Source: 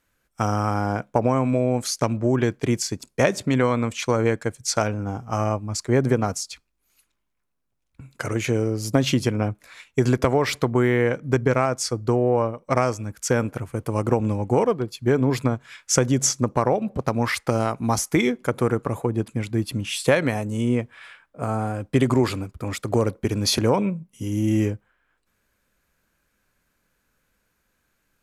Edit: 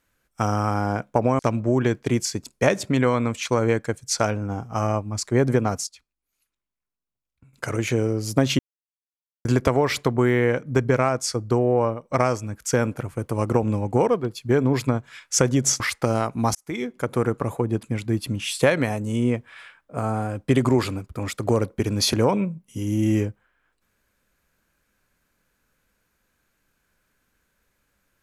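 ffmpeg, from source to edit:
-filter_complex "[0:a]asplit=8[a][b][c][d][e][f][g][h];[a]atrim=end=1.392[i];[b]atrim=start=1.958:end=6.442[j];[c]atrim=start=6.438:end=8.102,asetpts=PTS-STARTPTS,volume=-11.5dB[k];[d]atrim=start=8.098:end=9.16,asetpts=PTS-STARTPTS,afade=t=out:st=1.058:d=0.004:c=hsin[l];[e]atrim=start=9.16:end=10.02,asetpts=PTS-STARTPTS,volume=0[m];[f]atrim=start=10.02:end=16.372,asetpts=PTS-STARTPTS,afade=t=in:d=0.004:c=hsin[n];[g]atrim=start=17.248:end=18,asetpts=PTS-STARTPTS,afade=t=out:st=0.748:d=0.004:c=hsin[o];[h]atrim=start=18,asetpts=PTS-STARTPTS,afade=t=in:d=0.91:c=qsin[p];[i][j]acrossfade=d=0.004:c1=hsin:c2=hsin[q];[q][k]acrossfade=d=0.004:c1=hsin:c2=hsin[r];[l][m][n]concat=n=3:v=0:a=1[s];[r][s]acrossfade=d=0.004:c1=hsin:c2=hsin[t];[o][p]concat=n=2:v=0:a=1[u];[t][u]acrossfade=d=0.004:c1=hsin:c2=hsin"

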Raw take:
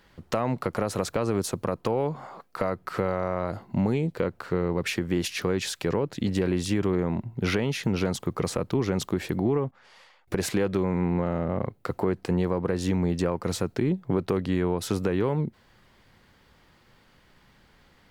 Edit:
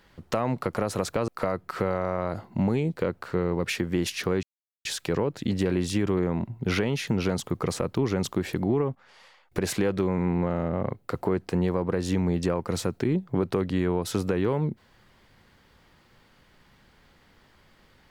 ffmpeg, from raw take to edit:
-filter_complex "[0:a]asplit=3[a][b][c];[a]atrim=end=1.282[d];[b]atrim=start=2.458:end=5.61,asetpts=PTS-STARTPTS,afade=t=out:st=3.148:d=0.004:c=hsin,apad=pad_dur=0.42[e];[c]atrim=start=5.61,asetpts=PTS-STARTPTS,afade=t=in:d=0.004:c=hsin[f];[e][f]concat=n=2:v=0:a=1[g];[d][g]acrossfade=d=0.004:c1=hsin:c2=hsin"

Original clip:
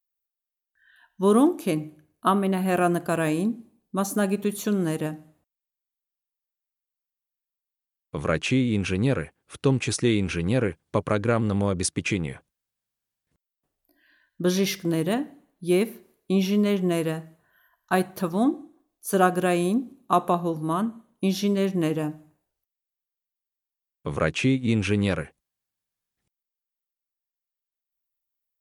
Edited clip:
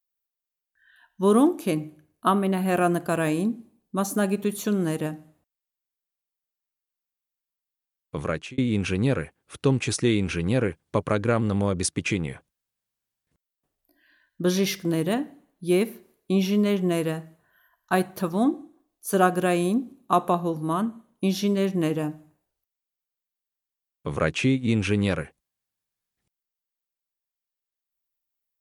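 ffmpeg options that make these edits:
-filter_complex "[0:a]asplit=2[a][b];[a]atrim=end=8.58,asetpts=PTS-STARTPTS,afade=t=out:st=8.18:d=0.4[c];[b]atrim=start=8.58,asetpts=PTS-STARTPTS,afade=t=in:d=0.004:c=hsin[d];[c][d]concat=n=2:v=0:a=1"

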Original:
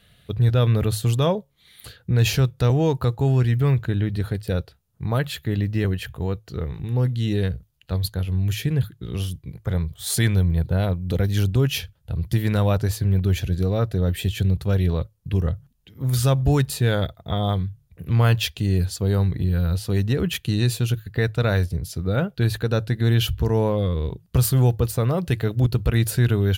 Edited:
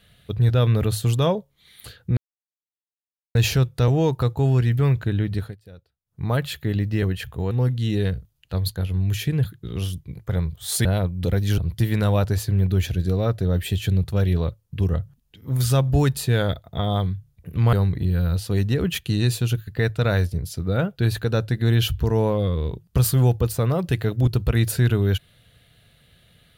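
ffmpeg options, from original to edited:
-filter_complex "[0:a]asplit=8[a][b][c][d][e][f][g][h];[a]atrim=end=2.17,asetpts=PTS-STARTPTS,afade=t=out:st=2.166:d=0.004:c=hsin,apad=pad_dur=1.18[i];[b]atrim=start=2.17:end=4.38,asetpts=PTS-STARTPTS,afade=t=in:d=0.004:c=hsin,afade=t=out:st=2.01:d=0.2:silence=0.0944061[j];[c]atrim=start=4.38:end=4.87,asetpts=PTS-STARTPTS,volume=-20.5dB[k];[d]atrim=start=4.87:end=6.332,asetpts=PTS-STARTPTS,afade=t=in:d=0.2:silence=0.0944061[l];[e]atrim=start=6.888:end=10.232[m];[f]atrim=start=10.718:end=11.452[n];[g]atrim=start=12.108:end=18.262[o];[h]atrim=start=19.118[p];[i][j][k][l]concat=n=4:v=0:a=1[q];[q][m]acrossfade=d=0.004:c1=hsin:c2=hsin[r];[r][n]acrossfade=d=0.004:c1=hsin:c2=hsin[s];[s][o]acrossfade=d=0.004:c1=hsin:c2=hsin[t];[t][p]acrossfade=d=0.004:c1=hsin:c2=hsin"

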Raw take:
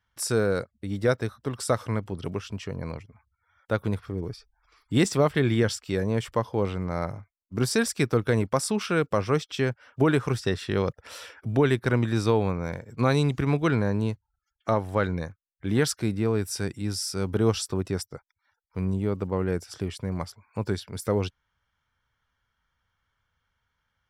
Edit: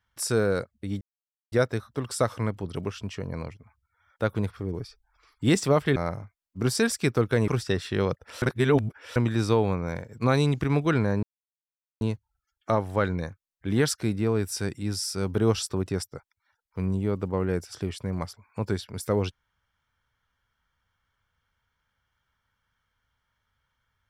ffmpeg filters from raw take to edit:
-filter_complex "[0:a]asplit=7[a][b][c][d][e][f][g];[a]atrim=end=1.01,asetpts=PTS-STARTPTS,afade=t=out:st=1.006:d=0.004:c=hsin,apad=pad_dur=0.51[h];[b]atrim=start=1.01:end=5.452,asetpts=PTS-STARTPTS,afade=t=in:d=0.004:c=hsin[i];[c]atrim=start=6.918:end=8.442[j];[d]atrim=start=10.248:end=11.192[k];[e]atrim=start=11.188:end=11.932,asetpts=PTS-STARTPTS,areverse[l];[f]atrim=start=11.928:end=14,asetpts=PTS-STARTPTS,afade=t=out:st=2.068:d=0.004:c=hsin,apad=pad_dur=0.78[m];[g]atrim=start=14,asetpts=PTS-STARTPTS,afade=t=in:d=0.004:c=hsin[n];[h][i]concat=n=2:v=0:a=1[o];[o][j]acrossfade=d=0.004:c1=hsin:c2=hsin[p];[p][k]acrossfade=d=0.004:c1=hsin:c2=hsin[q];[q][l]acrossfade=d=0.004:c1=hsin:c2=hsin[r];[m][n]concat=n=2:v=0:a=1[s];[r][s]acrossfade=d=0.004:c1=hsin:c2=hsin"

